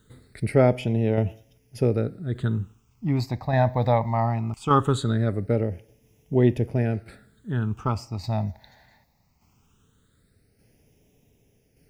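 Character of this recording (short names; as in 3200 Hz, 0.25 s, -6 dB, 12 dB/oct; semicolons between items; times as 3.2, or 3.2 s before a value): a quantiser's noise floor 12-bit, dither none; phasing stages 8, 0.2 Hz, lowest notch 390–1300 Hz; tremolo saw down 0.85 Hz, depth 45%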